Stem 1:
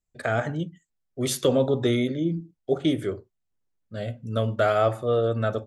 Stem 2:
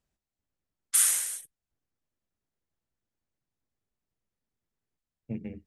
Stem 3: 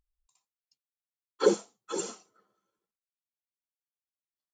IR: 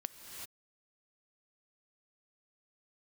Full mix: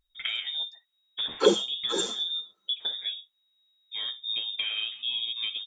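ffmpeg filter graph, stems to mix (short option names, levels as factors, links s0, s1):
-filter_complex "[0:a]flanger=delay=4.8:depth=8.2:regen=29:speed=1.1:shape=sinusoidal,volume=0.708,asplit=2[s0][s1];[1:a]aeval=exprs='0.0473*(abs(mod(val(0)/0.0473+3,4)-2)-1)':c=same,adelay=250,volume=0.562[s2];[2:a]volume=0.596[s3];[s1]apad=whole_len=260937[s4];[s2][s4]sidechaincompress=threshold=0.0112:ratio=8:attack=40:release=187[s5];[s0][s5]amix=inputs=2:normalize=0,lowpass=f=3200:t=q:w=0.5098,lowpass=f=3200:t=q:w=0.6013,lowpass=f=3200:t=q:w=0.9,lowpass=f=3200:t=q:w=2.563,afreqshift=-3800,acompressor=threshold=0.0178:ratio=12,volume=1[s6];[s3][s6]amix=inputs=2:normalize=0,acontrast=84"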